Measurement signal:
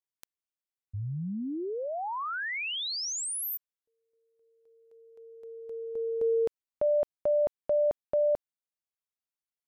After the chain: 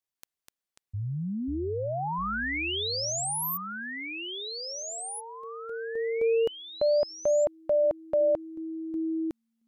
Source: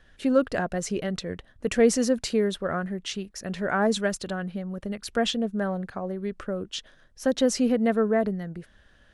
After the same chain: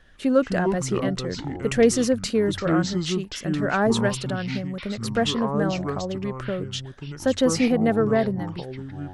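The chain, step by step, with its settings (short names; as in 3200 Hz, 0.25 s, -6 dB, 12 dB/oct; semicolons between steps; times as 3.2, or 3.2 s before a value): echoes that change speed 0.153 s, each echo -6 st, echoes 2, each echo -6 dB; gain +2 dB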